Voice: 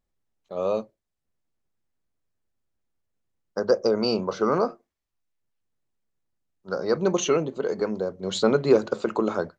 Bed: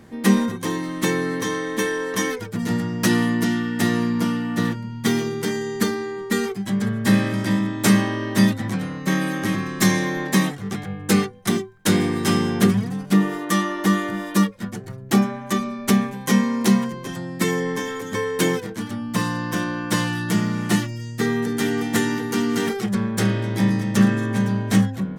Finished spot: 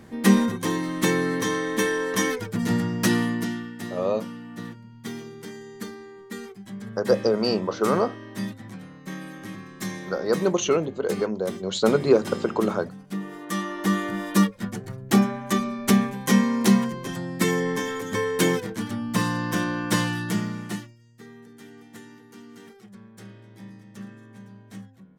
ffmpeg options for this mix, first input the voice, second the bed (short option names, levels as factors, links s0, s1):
-filter_complex "[0:a]adelay=3400,volume=1.06[s0];[1:a]volume=4.47,afade=t=out:st=2.84:d=0.94:silence=0.199526,afade=t=in:st=13.2:d=1.15:silence=0.211349,afade=t=out:st=19.94:d=1.02:silence=0.0707946[s1];[s0][s1]amix=inputs=2:normalize=0"